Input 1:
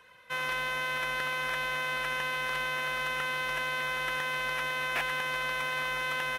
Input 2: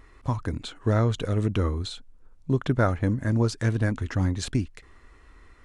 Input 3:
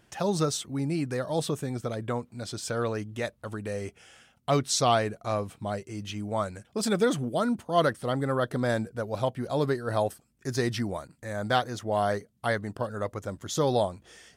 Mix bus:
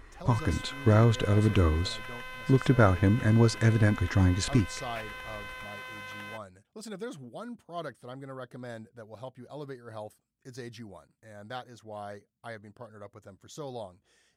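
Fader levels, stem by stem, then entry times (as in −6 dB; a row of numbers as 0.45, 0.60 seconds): −10.5, +1.0, −14.5 decibels; 0.00, 0.00, 0.00 seconds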